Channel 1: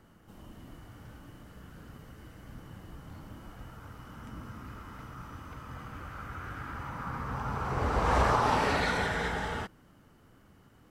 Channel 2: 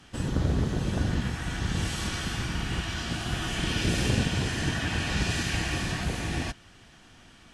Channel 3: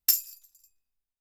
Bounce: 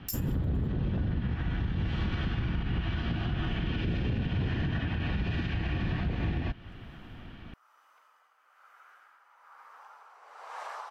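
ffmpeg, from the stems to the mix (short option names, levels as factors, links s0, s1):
-filter_complex "[0:a]highpass=f=640:w=0.5412,highpass=f=640:w=1.3066,tremolo=f=1.1:d=0.56,adelay=2450,volume=0.237[s0];[1:a]lowpass=f=3400:w=0.5412,lowpass=f=3400:w=1.3066,lowshelf=f=350:g=10,volume=1.19[s1];[2:a]volume=0.473[s2];[s0][s1][s2]amix=inputs=3:normalize=0,alimiter=limit=0.075:level=0:latency=1:release=187"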